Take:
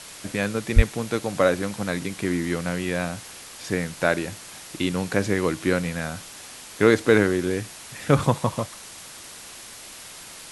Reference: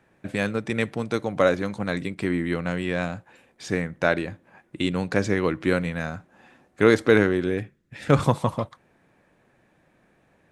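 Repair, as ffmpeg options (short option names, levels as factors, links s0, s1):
-filter_complex "[0:a]asplit=3[s0][s1][s2];[s0]afade=t=out:st=0.75:d=0.02[s3];[s1]highpass=f=140:w=0.5412,highpass=f=140:w=1.3066,afade=t=in:st=0.75:d=0.02,afade=t=out:st=0.87:d=0.02[s4];[s2]afade=t=in:st=0.87:d=0.02[s5];[s3][s4][s5]amix=inputs=3:normalize=0,afwtdn=0.011"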